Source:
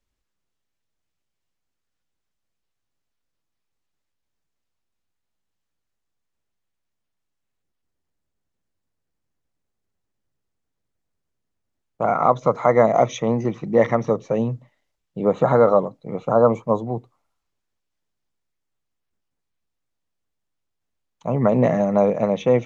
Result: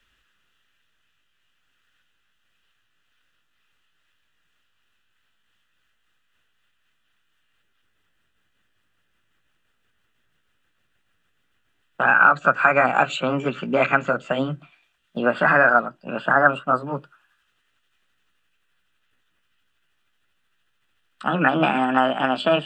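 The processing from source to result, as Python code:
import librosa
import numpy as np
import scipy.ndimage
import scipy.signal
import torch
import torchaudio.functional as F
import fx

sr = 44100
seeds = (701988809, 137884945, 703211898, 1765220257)

y = fx.pitch_glide(x, sr, semitones=4.5, runs='starting unshifted')
y = fx.band_shelf(y, sr, hz=2100.0, db=15.5, octaves=1.7)
y = fx.notch(y, sr, hz=2200.0, q=5.3)
y = fx.band_squash(y, sr, depth_pct=40)
y = y * 10.0 ** (-3.0 / 20.0)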